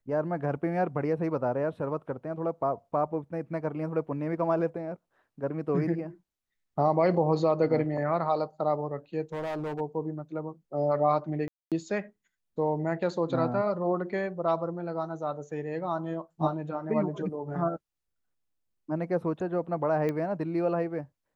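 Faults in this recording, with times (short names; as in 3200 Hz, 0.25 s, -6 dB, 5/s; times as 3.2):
9.33–9.81 clipped -29.5 dBFS
11.48–11.72 gap 0.237 s
20.09 pop -20 dBFS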